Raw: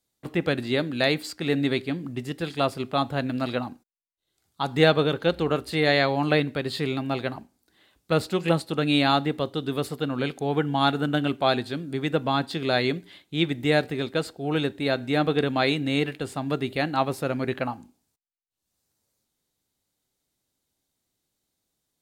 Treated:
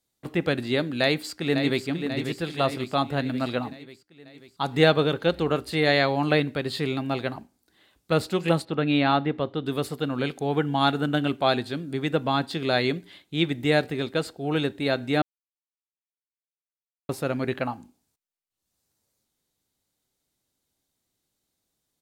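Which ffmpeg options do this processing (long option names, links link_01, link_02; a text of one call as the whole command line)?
ffmpeg -i in.wav -filter_complex "[0:a]asplit=2[link_01][link_02];[link_02]afade=type=in:start_time=1.01:duration=0.01,afade=type=out:start_time=1.86:duration=0.01,aecho=0:1:540|1080|1620|2160|2700|3240|3780|4320:0.421697|0.253018|0.151811|0.0910864|0.0546519|0.0327911|0.0196747|0.0118048[link_03];[link_01][link_03]amix=inputs=2:normalize=0,asettb=1/sr,asplit=3[link_04][link_05][link_06];[link_04]atrim=end=8.654[link_07];[link_05]atrim=start=8.65:end=9.66,asetpts=PTS-STARTPTS,afade=type=in:duration=0.004:curve=qsin,afade=type=out:start_time=1.006:duration=0.004:curve=qsin,lowpass=2900[link_08];[link_06]atrim=start=9.656[link_09];[link_07][link_08]acrossfade=duration=0.004:curve1=hsin:curve2=qsin[link_10];[link_10][link_09]acrossfade=duration=0.004:curve1=qsin:curve2=hsin,asplit=3[link_11][link_12][link_13];[link_11]atrim=end=15.22,asetpts=PTS-STARTPTS,afade=type=out:start_time=15.216:duration=0.004:curve=hsin[link_14];[link_12]atrim=start=15.22:end=17.09,asetpts=PTS-STARTPTS,volume=0[link_15];[link_13]atrim=start=17.09,asetpts=PTS-STARTPTS,afade=type=in:duration=0.004:curve=hsin[link_16];[link_14][link_15][link_16]concat=n=3:v=0:a=1" out.wav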